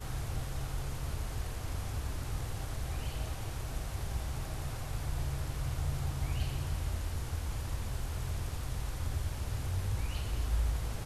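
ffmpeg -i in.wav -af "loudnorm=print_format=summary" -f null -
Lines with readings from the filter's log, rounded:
Input Integrated:    -37.5 LUFS
Input True Peak:     -21.0 dBTP
Input LRA:             2.5 LU
Input Threshold:     -47.5 LUFS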